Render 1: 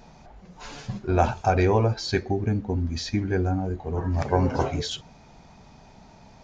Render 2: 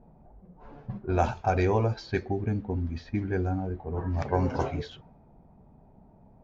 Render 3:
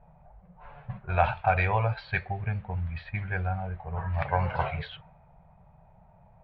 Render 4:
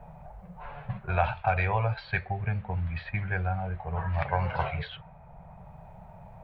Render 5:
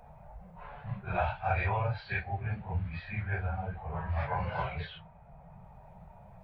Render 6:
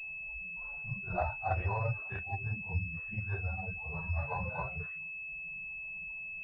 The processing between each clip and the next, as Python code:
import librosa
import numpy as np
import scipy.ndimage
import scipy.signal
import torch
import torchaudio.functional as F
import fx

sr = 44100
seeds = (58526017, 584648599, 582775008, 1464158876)

y1 = fx.env_lowpass(x, sr, base_hz=560.0, full_db=-17.0)
y1 = y1 * 10.0 ** (-4.0 / 20.0)
y2 = fx.curve_eq(y1, sr, hz=(170.0, 280.0, 580.0, 2500.0, 4200.0, 6300.0), db=(0, -27, 1, 9, -1, -29))
y3 = fx.band_squash(y2, sr, depth_pct=40)
y4 = fx.phase_scramble(y3, sr, seeds[0], window_ms=100)
y4 = y4 * 10.0 ** (-4.0 / 20.0)
y5 = fx.bin_expand(y4, sr, power=1.5)
y5 = fx.pwm(y5, sr, carrier_hz=2600.0)